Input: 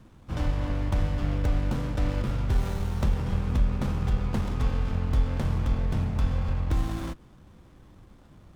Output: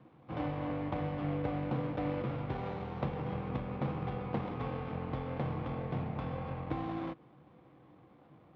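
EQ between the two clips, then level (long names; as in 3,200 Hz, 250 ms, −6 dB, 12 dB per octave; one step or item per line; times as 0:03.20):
loudspeaker in its box 140–3,600 Hz, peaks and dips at 140 Hz +9 dB, 310 Hz +8 dB, 490 Hz +9 dB, 750 Hz +10 dB, 1,100 Hz +6 dB, 2,200 Hz +5 dB
−8.5 dB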